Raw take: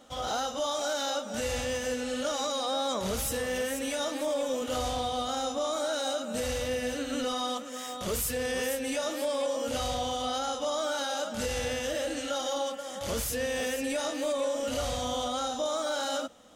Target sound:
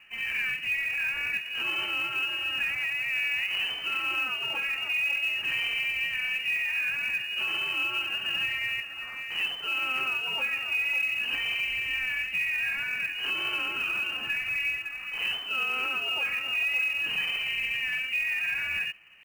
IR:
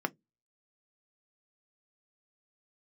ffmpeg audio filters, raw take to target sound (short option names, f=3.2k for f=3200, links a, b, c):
-af "lowpass=f=2.6k:t=q:w=0.5098,lowpass=f=2.6k:t=q:w=0.6013,lowpass=f=2.6k:t=q:w=0.9,lowpass=f=2.6k:t=q:w=2.563,afreqshift=-3100,acrusher=bits=5:mode=log:mix=0:aa=0.000001,atempo=0.86,volume=2dB"